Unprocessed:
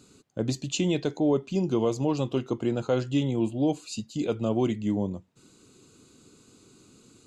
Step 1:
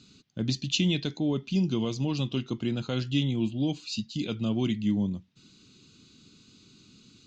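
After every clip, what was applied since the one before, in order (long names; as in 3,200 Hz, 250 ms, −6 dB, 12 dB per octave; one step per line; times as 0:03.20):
drawn EQ curve 110 Hz 0 dB, 200 Hz +3 dB, 490 Hz −11 dB, 850 Hz −9 dB, 3,500 Hz +7 dB, 5,900 Hz +3 dB, 9,400 Hz −21 dB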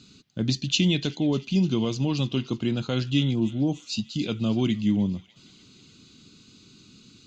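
gain on a spectral selection 0:03.35–0:03.89, 1,300–5,300 Hz −15 dB
delay with a high-pass on its return 300 ms, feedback 62%, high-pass 1,400 Hz, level −18 dB
level +3.5 dB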